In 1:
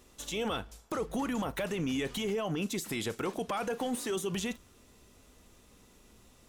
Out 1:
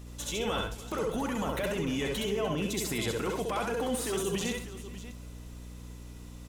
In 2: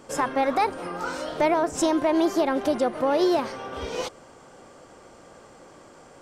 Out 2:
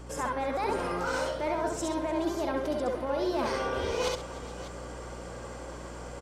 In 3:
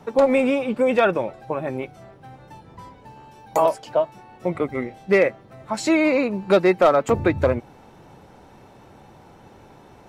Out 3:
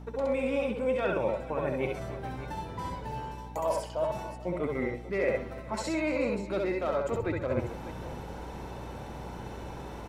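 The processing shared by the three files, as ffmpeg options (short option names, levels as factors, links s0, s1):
-af "areverse,acompressor=threshold=0.0224:ratio=10,areverse,aecho=1:1:66|68|130|298|432|595:0.631|0.501|0.224|0.112|0.106|0.2,acontrast=85,aeval=exprs='val(0)+0.01*(sin(2*PI*60*n/s)+sin(2*PI*2*60*n/s)/2+sin(2*PI*3*60*n/s)/3+sin(2*PI*4*60*n/s)/4+sin(2*PI*5*60*n/s)/5)':c=same,volume=0.668"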